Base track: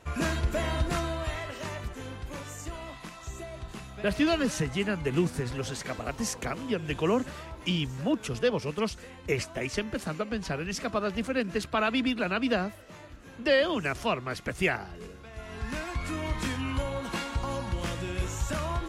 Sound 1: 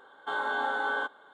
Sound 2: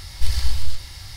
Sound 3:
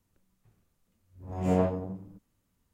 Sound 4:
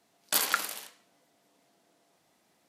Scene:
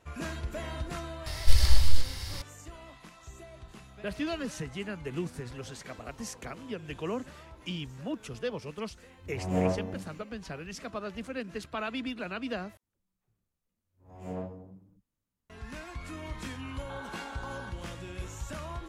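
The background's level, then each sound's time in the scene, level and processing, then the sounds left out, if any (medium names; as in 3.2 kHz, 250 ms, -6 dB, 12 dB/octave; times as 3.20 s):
base track -8 dB
1.26 s: add 2 -0.5 dB
8.06 s: add 3 -2 dB
12.77 s: replace with 3 -12.5 dB + phase dispersion lows, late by 67 ms, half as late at 310 Hz
16.63 s: add 1 -3.5 dB + compression, threshold -38 dBFS
not used: 4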